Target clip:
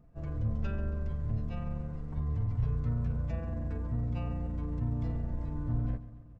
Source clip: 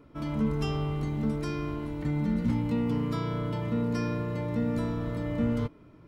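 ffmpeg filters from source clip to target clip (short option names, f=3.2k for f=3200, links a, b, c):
-af "atempo=1.9,lowshelf=f=69:g=11,aecho=1:1:69|138|207|276|345|414:0.158|0.0919|0.0533|0.0309|0.0179|0.0104,asetrate=22050,aresample=44100,equalizer=f=6k:w=0.3:g=-3.5,volume=-5dB"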